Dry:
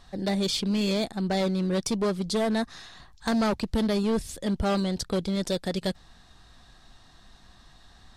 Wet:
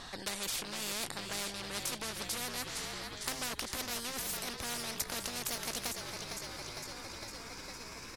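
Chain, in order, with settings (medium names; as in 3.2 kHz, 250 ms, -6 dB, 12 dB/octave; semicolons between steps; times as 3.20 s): pitch bend over the whole clip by +5.5 st starting unshifted; frequency-shifting echo 456 ms, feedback 63%, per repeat -45 Hz, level -14 dB; spectrum-flattening compressor 4:1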